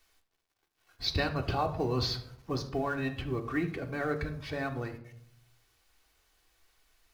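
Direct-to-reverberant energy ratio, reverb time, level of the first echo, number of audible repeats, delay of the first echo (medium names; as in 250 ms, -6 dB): 3.5 dB, 0.70 s, no echo, no echo, no echo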